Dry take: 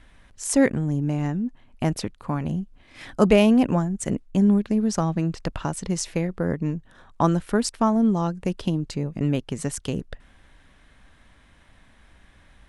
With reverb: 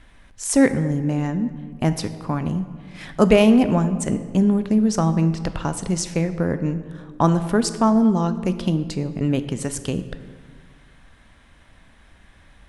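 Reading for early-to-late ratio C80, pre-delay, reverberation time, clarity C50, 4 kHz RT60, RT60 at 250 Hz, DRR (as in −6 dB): 13.5 dB, 12 ms, 1.7 s, 12.0 dB, 1.0 s, 2.1 s, 10.5 dB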